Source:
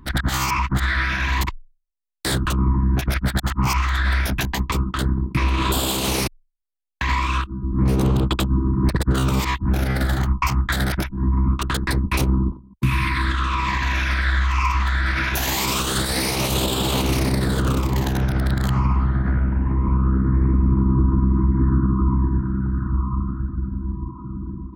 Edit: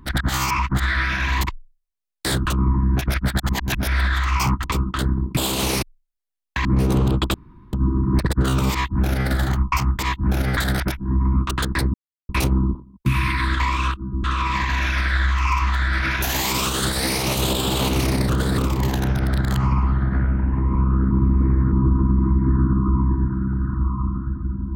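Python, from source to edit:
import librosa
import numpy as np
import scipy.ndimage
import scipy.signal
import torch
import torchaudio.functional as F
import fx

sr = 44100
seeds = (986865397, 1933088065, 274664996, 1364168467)

y = fx.edit(x, sr, fx.reverse_span(start_s=3.49, length_s=1.15),
    fx.cut(start_s=5.37, length_s=0.45),
    fx.move(start_s=7.1, length_s=0.64, to_s=13.37),
    fx.insert_room_tone(at_s=8.43, length_s=0.39),
    fx.duplicate(start_s=9.41, length_s=0.58, to_s=10.69),
    fx.insert_silence(at_s=12.06, length_s=0.35),
    fx.reverse_span(start_s=17.42, length_s=0.29),
    fx.reverse_span(start_s=20.24, length_s=0.61), tone=tone)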